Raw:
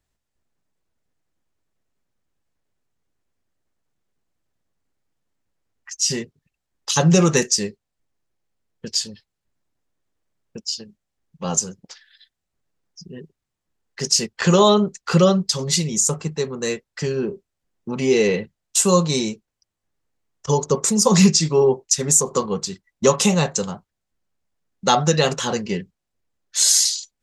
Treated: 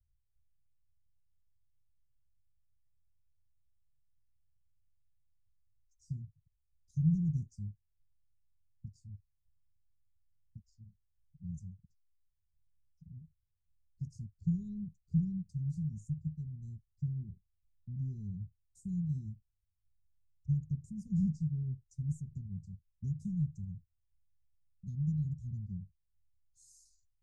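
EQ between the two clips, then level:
inverse Chebyshev band-stop filter 540–2,900 Hz, stop band 80 dB
high-frequency loss of the air 97 metres
head-to-tape spacing loss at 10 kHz 25 dB
+3.0 dB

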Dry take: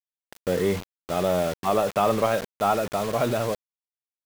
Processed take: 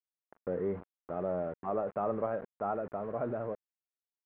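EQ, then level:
low-pass filter 1,400 Hz 24 dB per octave
low-shelf EQ 160 Hz −9 dB
dynamic equaliser 1,000 Hz, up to −6 dB, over −38 dBFS, Q 1.1
−7.0 dB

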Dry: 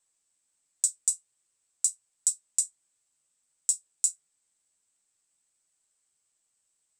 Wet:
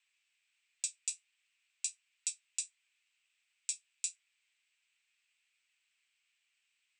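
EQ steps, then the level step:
high-pass with resonance 2,500 Hz, resonance Q 4
head-to-tape spacing loss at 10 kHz 31 dB
+11.5 dB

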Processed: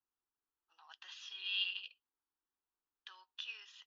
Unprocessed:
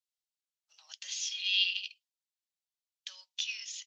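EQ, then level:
Chebyshev low-pass filter 2,300 Hz, order 3
phaser with its sweep stopped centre 590 Hz, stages 6
+9.0 dB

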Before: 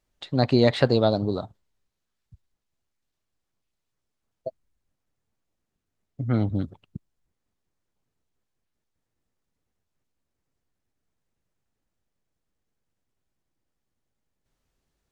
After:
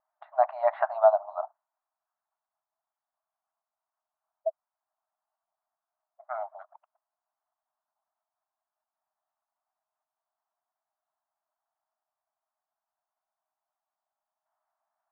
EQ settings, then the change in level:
linear-phase brick-wall high-pass 600 Hz
low-pass filter 1,200 Hz 24 dB per octave
+6.0 dB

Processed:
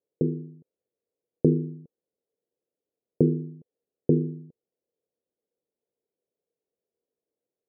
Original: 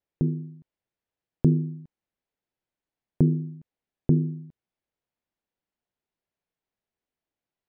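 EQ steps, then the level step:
high-pass filter 210 Hz 6 dB per octave
low-pass with resonance 470 Hz, resonance Q 4.9
0.0 dB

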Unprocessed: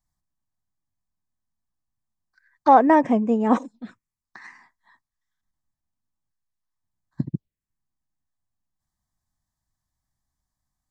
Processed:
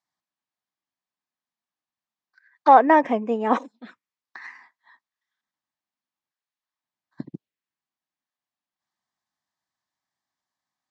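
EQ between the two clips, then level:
band-pass filter 320–3,400 Hz
high-shelf EQ 2,000 Hz +9 dB
0.0 dB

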